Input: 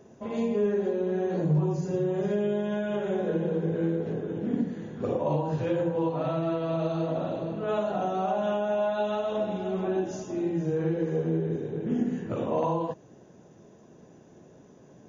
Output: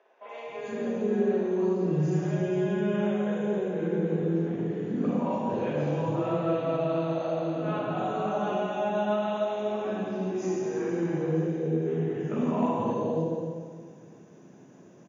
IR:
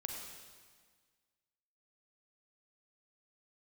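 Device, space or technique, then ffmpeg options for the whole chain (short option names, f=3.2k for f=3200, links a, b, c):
stadium PA: -filter_complex "[0:a]highpass=f=120:w=0.5412,highpass=f=120:w=1.3066,equalizer=f=2.4k:t=o:w=0.44:g=3,aecho=1:1:169.1|247.8:0.316|0.282[a];[1:a]atrim=start_sample=2205[b];[a][b]afir=irnorm=-1:irlink=0,asettb=1/sr,asplit=3[c][d][e];[c]atrim=end=10.424[f];[d]atrim=start=10.42:end=11.45,asetpts=PTS-STARTPTS,afade=t=in:d=0.004:c=qsin,afade=t=out:st=1.026:d=0.004:c=qsin,equalizer=f=1k:t=o:w=1.2:g=4.5[g];[e]atrim=start=11.446[h];[f][g]acrossfade=d=0.004:c1=hsin:c2=qsin[i];[i][h]acrossfade=d=0.004:c1=qsin:c2=hsin,acrossover=split=560|3700[j][k][l];[l]adelay=290[m];[j]adelay=470[n];[n][k][m]amix=inputs=3:normalize=0,volume=2dB"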